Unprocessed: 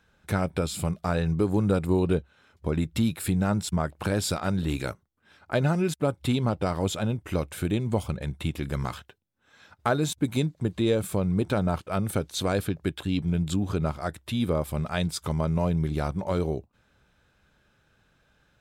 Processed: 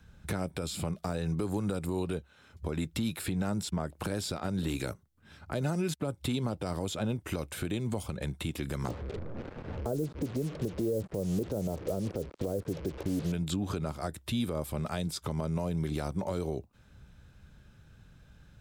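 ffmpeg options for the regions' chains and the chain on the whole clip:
ffmpeg -i in.wav -filter_complex "[0:a]asettb=1/sr,asplit=3[link_01][link_02][link_03];[link_01]atrim=end=8.884[link_04];[link_02]atrim=start=8.88:end=13.32,asetpts=PTS-STARTPTS,afade=type=in:duration=0.004:curve=qsin,afade=type=out:start_time=4.436:duration=0.004:curve=qsin,aeval=exprs='val(0)+0.5*0.0178*sgn(val(0))':channel_layout=same,lowpass=frequency=500:width_type=q:width=2.4,acrusher=bits=6:mix=0:aa=0.5[link_05];[link_03]atrim=start=13.316[link_06];[link_04][link_05]acrossfade=duration=0.004:curve1=hsin:curve2=qsin[link_07];[link_07][link_06]acrossfade=duration=0.004:curve1=qsin:curve2=hsin,bass=frequency=250:gain=14,treble=frequency=4000:gain=4,acrossover=split=290|620|5000[link_08][link_09][link_10][link_11];[link_08]acompressor=threshold=-39dB:ratio=4[link_12];[link_09]acompressor=threshold=-31dB:ratio=4[link_13];[link_10]acompressor=threshold=-38dB:ratio=4[link_14];[link_11]acompressor=threshold=-44dB:ratio=4[link_15];[link_12][link_13][link_14][link_15]amix=inputs=4:normalize=0,alimiter=limit=-22dB:level=0:latency=1:release=89" out.wav

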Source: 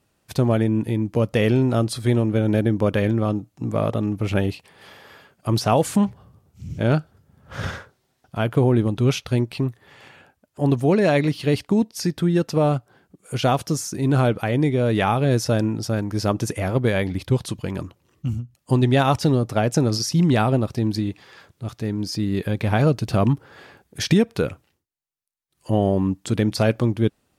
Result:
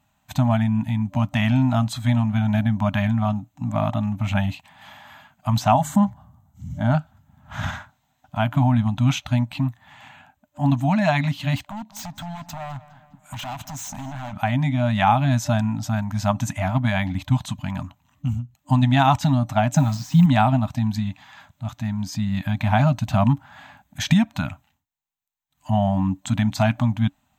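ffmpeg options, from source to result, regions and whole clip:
ffmpeg -i in.wav -filter_complex "[0:a]asettb=1/sr,asplit=3[link_01][link_02][link_03];[link_01]atrim=end=5.724[link_04];[link_02]atrim=start=5.72:end=6.95,asetpts=PTS-STARTPTS,afade=type=in:duration=0.004:curve=qsin,afade=type=out:start_time=1.226:duration=0.004:curve=qsin,asuperstop=centerf=2500:order=4:qfactor=6.8,equalizer=frequency=3000:width_type=o:width=1.5:gain=-7,bandreject=frequency=50:width_type=h:width=6,bandreject=frequency=100:width_type=h:width=6,bandreject=frequency=150:width_type=h:width=6[link_05];[link_03]atrim=start=6.946[link_06];[link_04][link_05]acrossfade=duration=0.004:curve1=hsin:curve2=qsin[link_07];[link_07][link_06]acrossfade=duration=0.004:curve1=qsin:curve2=hsin,asettb=1/sr,asplit=3[link_08][link_09][link_10];[link_08]atrim=end=11.564[link_11];[link_09]atrim=start=11.56:end=14.33,asetpts=PTS-STARTPTS,afade=type=in:duration=0.004:curve=qsin,afade=type=out:start_time=2.766:duration=0.004:curve=qsin,acompressor=threshold=-25dB:ratio=16:attack=3.2:release=140:knee=1:detection=peak,aeval=exprs='0.0398*(abs(mod(val(0)/0.0398+3,4)-2)-1)':channel_layout=same,asplit=2[link_12][link_13];[link_13]adelay=205,lowpass=frequency=4800:poles=1,volume=-17dB,asplit=2[link_14][link_15];[link_15]adelay=205,lowpass=frequency=4800:poles=1,volume=0.51,asplit=2[link_16][link_17];[link_17]adelay=205,lowpass=frequency=4800:poles=1,volume=0.51,asplit=2[link_18][link_19];[link_19]adelay=205,lowpass=frequency=4800:poles=1,volume=0.51[link_20];[link_12][link_14][link_16][link_18][link_20]amix=inputs=5:normalize=0,atrim=end_sample=122157[link_21];[link_10]atrim=start=14.326[link_22];[link_11][link_21]acrossfade=duration=0.004:curve1=hsin:curve2=qsin[link_23];[link_23][link_22]acrossfade=duration=0.004:curve1=qsin:curve2=hsin,asettb=1/sr,asplit=3[link_24][link_25][link_26];[link_24]atrim=end=19.754[link_27];[link_25]atrim=start=19.75:end=20.26,asetpts=PTS-STARTPTS,afade=type=in:duration=0.004:curve=qsin,afade=type=out:start_time=0.506:duration=0.004:curve=qsin,deesser=0.65,aecho=1:1:6.3:0.5,atrim=end_sample=22491,acrusher=bits=6:mix=0:aa=0.5[link_28];[link_26]atrim=start=20.256[link_29];[link_27][link_28]acrossfade=duration=0.004:curve1=hsin:curve2=qsin[link_30];[link_30][link_29]acrossfade=duration=0.004:curve1=qsin:curve2=hsin,superequalizer=9b=1.78:14b=0.398:16b=0.251,afftfilt=real='re*(1-between(b*sr/4096,280,590))':imag='im*(1-between(b*sr/4096,280,590))':win_size=4096:overlap=0.75,volume=1dB" out.wav

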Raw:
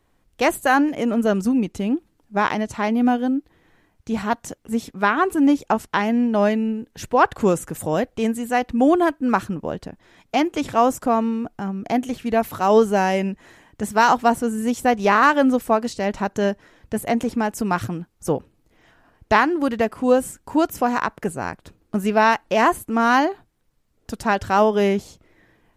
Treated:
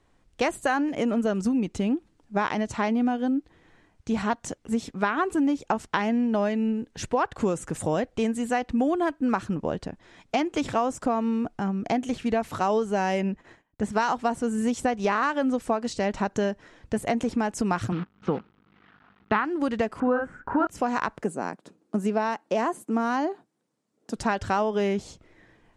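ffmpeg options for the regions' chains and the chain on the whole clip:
ffmpeg -i in.wav -filter_complex "[0:a]asettb=1/sr,asplit=3[link_01][link_02][link_03];[link_01]atrim=end=13.214[link_04];[link_02]atrim=start=13.21:end=13.93,asetpts=PTS-STARTPTS,afade=type=in:duration=0.004:curve=qsin,afade=type=out:start_time=0.716:duration=0.004:curve=qsin,agate=range=-23dB:threshold=-49dB:ratio=16:release=100:detection=peak,highshelf=frequency=3700:gain=-10[link_05];[link_03]atrim=start=13.926[link_06];[link_04][link_05]acrossfade=duration=0.004:curve1=hsin:curve2=qsin[link_07];[link_07][link_06]acrossfade=duration=0.004:curve1=qsin:curve2=hsin,asettb=1/sr,asplit=3[link_08][link_09][link_10];[link_08]atrim=end=17.924[link_11];[link_09]atrim=start=17.92:end=19.45,asetpts=PTS-STARTPTS,afade=type=in:duration=0.004:curve=qsin,afade=type=out:start_time=1.526:duration=0.004:curve=qsin,aeval=exprs='val(0)+0.00178*(sin(2*PI*50*n/s)+sin(2*PI*2*50*n/s)/2+sin(2*PI*3*50*n/s)/3+sin(2*PI*4*50*n/s)/4+sin(2*PI*5*50*n/s)/5)':channel_layout=same,acrusher=bits=7:dc=4:mix=0:aa=0.000001,highpass=130,equalizer=frequency=200:width_type=q:width=4:gain=7,equalizer=frequency=600:width_type=q:width=4:gain=-7,equalizer=frequency=1300:width_type=q:width=4:gain=9,lowpass=frequency=3400:width=0.5412,lowpass=frequency=3400:width=1.3066[link_12];[link_10]atrim=start=19.446[link_13];[link_11][link_12]acrossfade=duration=0.004:curve1=hsin:curve2=qsin[link_14];[link_14][link_13]acrossfade=duration=0.004:curve1=qsin:curve2=hsin,asettb=1/sr,asplit=3[link_15][link_16][link_17];[link_15]atrim=end=20.004[link_18];[link_16]atrim=start=20:end=20.67,asetpts=PTS-STARTPTS,afade=type=in:duration=0.004:curve=qsin,afade=type=out:start_time=0.666:duration=0.004:curve=qsin,lowpass=frequency=1500:width_type=q:width=5.7,asplit=2[link_19][link_20];[link_20]adelay=48,volume=-3.5dB[link_21];[link_19][link_21]amix=inputs=2:normalize=0,atrim=end_sample=29547[link_22];[link_17]atrim=start=20.666[link_23];[link_18][link_22]acrossfade=duration=0.004:curve1=hsin:curve2=qsin[link_24];[link_24][link_23]acrossfade=duration=0.004:curve1=qsin:curve2=hsin,asettb=1/sr,asplit=3[link_25][link_26][link_27];[link_25]atrim=end=21.224[link_28];[link_26]atrim=start=21.22:end=24.16,asetpts=PTS-STARTPTS,afade=type=in:duration=0.004:curve=qsin,afade=type=out:start_time=2.936:duration=0.004:curve=qsin,highpass=frequency=180:width=0.5412,highpass=frequency=180:width=1.3066,equalizer=frequency=2600:width=0.45:gain=-8[link_29];[link_27]atrim=start=24.156[link_30];[link_28][link_29]acrossfade=duration=0.004:curve1=hsin:curve2=qsin[link_31];[link_31][link_30]acrossfade=duration=0.004:curve1=qsin:curve2=hsin,lowpass=frequency=9100:width=0.5412,lowpass=frequency=9100:width=1.3066,acompressor=threshold=-21dB:ratio=6" out.wav

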